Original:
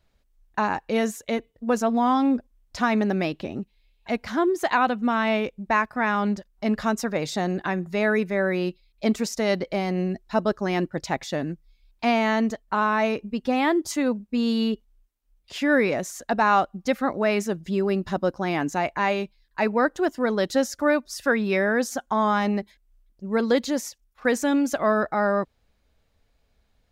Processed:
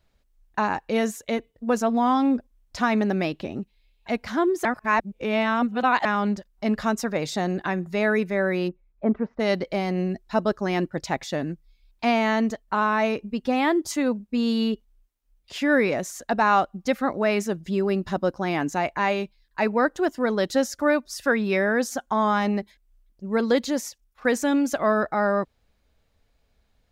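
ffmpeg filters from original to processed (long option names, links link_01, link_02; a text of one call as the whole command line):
ffmpeg -i in.wav -filter_complex "[0:a]asplit=3[link_01][link_02][link_03];[link_01]afade=type=out:start_time=8.67:duration=0.02[link_04];[link_02]lowpass=frequency=1500:width=0.5412,lowpass=frequency=1500:width=1.3066,afade=type=in:start_time=8.67:duration=0.02,afade=type=out:start_time=9.39:duration=0.02[link_05];[link_03]afade=type=in:start_time=9.39:duration=0.02[link_06];[link_04][link_05][link_06]amix=inputs=3:normalize=0,asplit=3[link_07][link_08][link_09];[link_07]atrim=end=4.652[link_10];[link_08]atrim=start=4.648:end=6.052,asetpts=PTS-STARTPTS,areverse[link_11];[link_09]atrim=start=6.048[link_12];[link_10][link_11]acrossfade=duration=0.004:curve1=hsin:curve2=hsin[link_13];[link_13][link_12]acrossfade=duration=0.004:curve1=hsin:curve2=hsin" out.wav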